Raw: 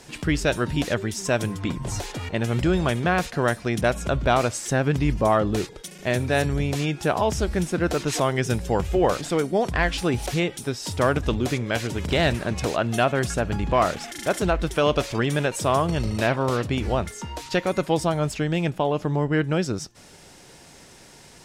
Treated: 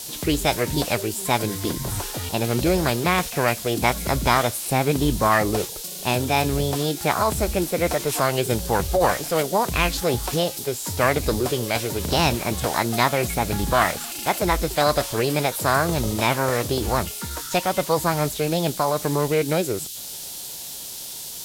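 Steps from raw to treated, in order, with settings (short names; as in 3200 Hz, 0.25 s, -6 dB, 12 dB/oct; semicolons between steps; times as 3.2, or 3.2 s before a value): band noise 2300–11000 Hz -36 dBFS; formant shift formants +6 st; gain +1 dB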